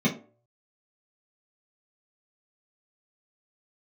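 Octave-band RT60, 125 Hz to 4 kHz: 0.45, 0.40, 0.50, 0.40, 0.25, 0.20 s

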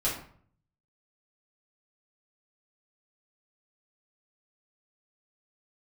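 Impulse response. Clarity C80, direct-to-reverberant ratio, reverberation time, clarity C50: 9.5 dB, -7.5 dB, 0.55 s, 5.5 dB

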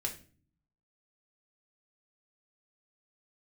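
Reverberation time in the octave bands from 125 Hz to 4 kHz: 1.0, 0.80, 0.45, 0.35, 0.35, 0.35 s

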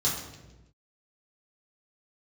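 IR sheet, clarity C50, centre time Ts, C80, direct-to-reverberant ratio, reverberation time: 4.0 dB, 46 ms, 6.5 dB, -6.5 dB, 1.1 s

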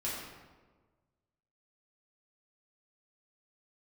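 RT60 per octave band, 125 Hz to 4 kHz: 1.8, 1.5, 1.5, 1.3, 1.0, 0.85 s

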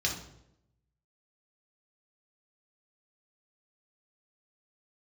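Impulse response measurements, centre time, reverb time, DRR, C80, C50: 27 ms, 0.80 s, -1.5 dB, 10.5 dB, 6.0 dB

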